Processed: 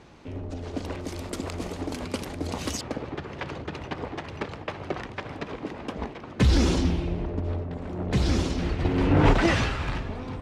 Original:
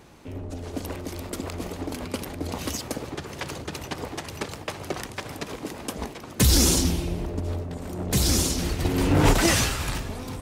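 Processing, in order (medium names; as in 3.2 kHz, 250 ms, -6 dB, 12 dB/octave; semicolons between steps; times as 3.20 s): low-pass 5.3 kHz 12 dB/octave, from 1.01 s 8.7 kHz, from 2.81 s 2.8 kHz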